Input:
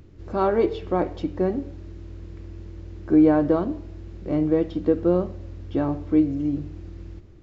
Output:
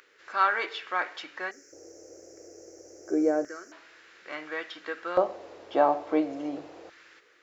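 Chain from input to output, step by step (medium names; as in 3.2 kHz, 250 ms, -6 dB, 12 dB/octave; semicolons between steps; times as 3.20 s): 1.51–3.72 s: FFT filter 130 Hz 0 dB, 190 Hz -11 dB, 380 Hz +1 dB, 990 Hz -26 dB, 1.4 kHz -11 dB, 2.1 kHz -11 dB, 3.7 kHz -29 dB, 5.6 kHz +15 dB, 8 kHz +11 dB; band noise 280–510 Hz -51 dBFS; LFO high-pass square 0.29 Hz 710–1600 Hz; trim +4.5 dB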